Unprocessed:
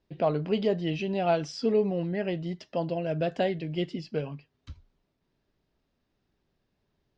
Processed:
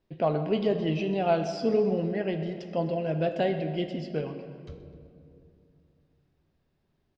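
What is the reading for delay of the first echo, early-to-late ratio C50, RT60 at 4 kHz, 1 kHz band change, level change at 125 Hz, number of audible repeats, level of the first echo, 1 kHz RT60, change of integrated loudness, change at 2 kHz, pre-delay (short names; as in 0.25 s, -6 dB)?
0.127 s, 8.0 dB, 1.4 s, +1.0 dB, +1.0 dB, 2, -17.5 dB, 2.3 s, +1.0 dB, 0.0 dB, 3 ms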